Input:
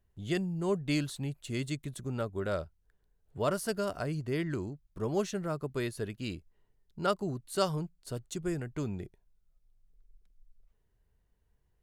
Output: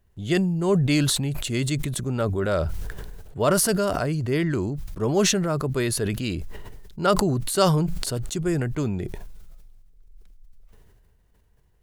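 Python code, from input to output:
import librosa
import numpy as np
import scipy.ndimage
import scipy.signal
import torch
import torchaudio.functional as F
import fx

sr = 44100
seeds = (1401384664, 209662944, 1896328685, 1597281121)

y = fx.sustainer(x, sr, db_per_s=26.0)
y = y * 10.0 ** (8.5 / 20.0)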